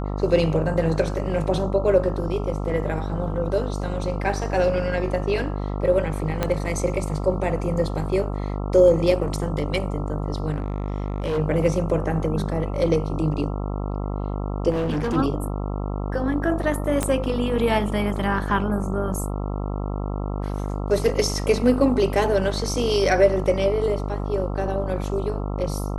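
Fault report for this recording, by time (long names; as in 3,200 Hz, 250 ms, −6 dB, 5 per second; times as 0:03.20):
mains buzz 50 Hz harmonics 27 −27 dBFS
0:06.43: click −8 dBFS
0:10.50–0:11.39: clipping −20.5 dBFS
0:14.70–0:15.17: clipping −20.5 dBFS
0:17.03: click −8 dBFS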